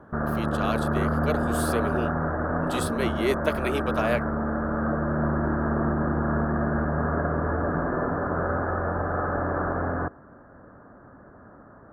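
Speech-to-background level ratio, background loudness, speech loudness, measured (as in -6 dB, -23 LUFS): -4.0 dB, -27.0 LUFS, -31.0 LUFS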